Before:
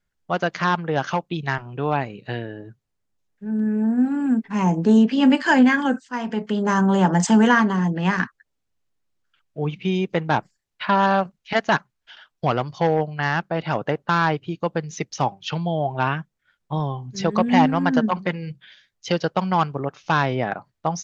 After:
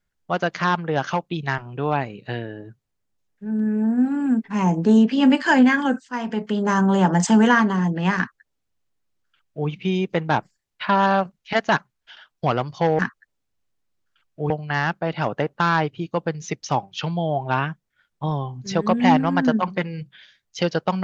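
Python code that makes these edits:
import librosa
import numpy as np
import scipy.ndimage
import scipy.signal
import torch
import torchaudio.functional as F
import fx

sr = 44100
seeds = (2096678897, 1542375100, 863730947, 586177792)

y = fx.edit(x, sr, fx.duplicate(start_s=8.17, length_s=1.51, to_s=12.99), tone=tone)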